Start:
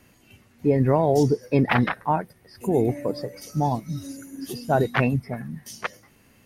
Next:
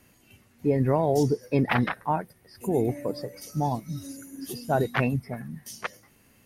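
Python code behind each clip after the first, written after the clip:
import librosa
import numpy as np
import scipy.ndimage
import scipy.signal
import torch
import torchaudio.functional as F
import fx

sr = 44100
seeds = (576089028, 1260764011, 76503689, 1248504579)

y = fx.peak_eq(x, sr, hz=12000.0, db=5.0, octaves=1.2)
y = y * librosa.db_to_amplitude(-3.5)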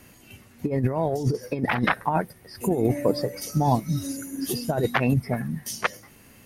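y = fx.over_compress(x, sr, threshold_db=-26.0, ratio=-0.5)
y = y * librosa.db_to_amplitude(5.0)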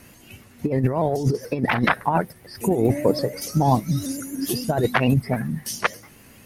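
y = fx.vibrato_shape(x, sr, shape='saw_up', rate_hz=6.9, depth_cents=100.0)
y = y * librosa.db_to_amplitude(3.0)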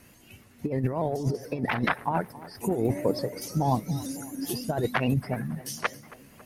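y = fx.echo_tape(x, sr, ms=275, feedback_pct=74, wet_db=-17, lp_hz=1500.0, drive_db=6.0, wow_cents=28)
y = y * librosa.db_to_amplitude(-6.5)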